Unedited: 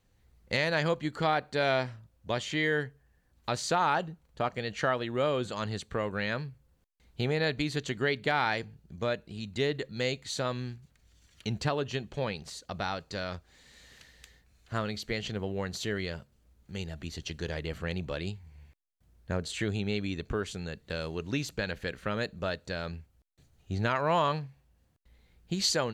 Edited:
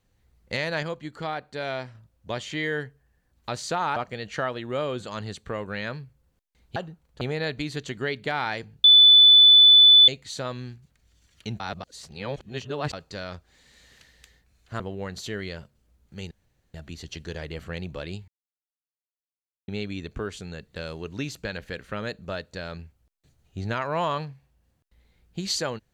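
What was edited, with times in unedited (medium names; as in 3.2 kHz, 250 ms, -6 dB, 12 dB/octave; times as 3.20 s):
0.83–1.95 s: gain -4 dB
3.96–4.41 s: move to 7.21 s
8.84–10.08 s: bleep 3.49 kHz -9.5 dBFS
11.60–12.93 s: reverse
14.80–15.37 s: delete
16.88 s: insert room tone 0.43 s
18.42–19.82 s: mute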